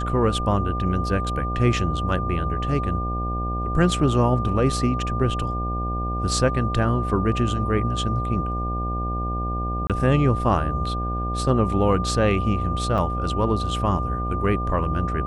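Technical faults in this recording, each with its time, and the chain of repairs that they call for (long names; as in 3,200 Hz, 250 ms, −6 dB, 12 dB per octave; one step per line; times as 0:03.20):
mains buzz 60 Hz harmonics 13 −27 dBFS
whistle 1,200 Hz −28 dBFS
0:09.87–0:09.90: drop-out 27 ms
0:12.98: drop-out 2.8 ms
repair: notch filter 1,200 Hz, Q 30
hum removal 60 Hz, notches 13
repair the gap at 0:09.87, 27 ms
repair the gap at 0:12.98, 2.8 ms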